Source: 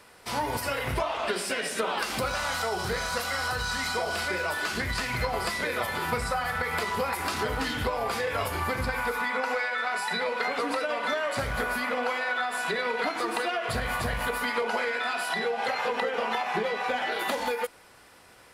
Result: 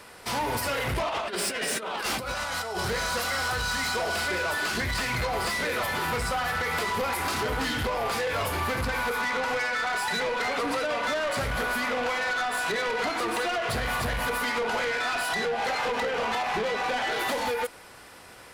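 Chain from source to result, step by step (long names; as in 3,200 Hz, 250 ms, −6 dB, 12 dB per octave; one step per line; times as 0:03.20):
0:01.08–0:02.80: compressor whose output falls as the input rises −33 dBFS, ratio −0.5
soft clipping −30.5 dBFS, distortion −10 dB
level +6 dB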